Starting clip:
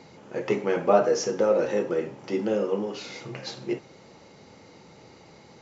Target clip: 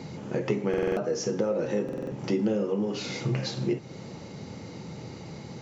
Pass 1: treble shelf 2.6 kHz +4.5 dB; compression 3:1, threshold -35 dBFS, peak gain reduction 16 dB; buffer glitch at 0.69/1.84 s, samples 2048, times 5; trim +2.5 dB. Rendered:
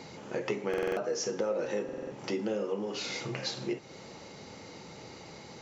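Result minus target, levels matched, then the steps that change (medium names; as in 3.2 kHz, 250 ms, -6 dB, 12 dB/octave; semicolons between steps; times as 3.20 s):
125 Hz band -7.5 dB
add after compression: peaking EQ 130 Hz +13 dB 2.6 oct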